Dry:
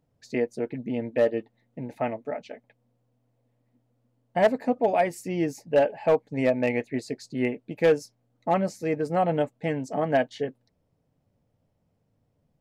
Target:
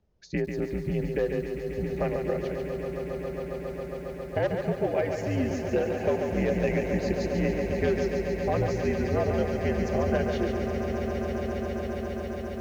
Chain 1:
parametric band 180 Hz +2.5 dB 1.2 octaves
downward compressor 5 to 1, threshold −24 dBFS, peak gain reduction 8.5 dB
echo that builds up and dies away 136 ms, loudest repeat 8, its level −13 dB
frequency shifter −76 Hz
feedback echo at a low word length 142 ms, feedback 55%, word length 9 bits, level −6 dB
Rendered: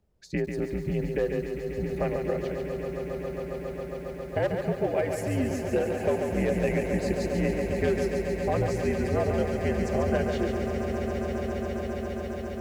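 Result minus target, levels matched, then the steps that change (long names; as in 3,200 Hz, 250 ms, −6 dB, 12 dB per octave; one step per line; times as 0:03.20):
8,000 Hz band +3.5 dB
add first: Butterworth low-pass 6,900 Hz 96 dB per octave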